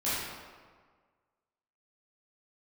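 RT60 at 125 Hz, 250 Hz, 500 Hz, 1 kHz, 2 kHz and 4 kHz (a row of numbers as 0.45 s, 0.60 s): 1.6 s, 1.6 s, 1.6 s, 1.6 s, 1.3 s, 1.0 s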